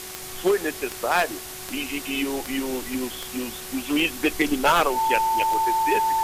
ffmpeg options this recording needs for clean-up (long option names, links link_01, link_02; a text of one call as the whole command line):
ffmpeg -i in.wav -af "adeclick=threshold=4,bandreject=frequency=371.4:width_type=h:width=4,bandreject=frequency=742.8:width_type=h:width=4,bandreject=frequency=1114.2:width_type=h:width=4,bandreject=frequency=1485.6:width_type=h:width=4,bandreject=frequency=1857:width_type=h:width=4,bandreject=frequency=2228.4:width_type=h:width=4,bandreject=frequency=890:width=30,afwtdn=0.016" out.wav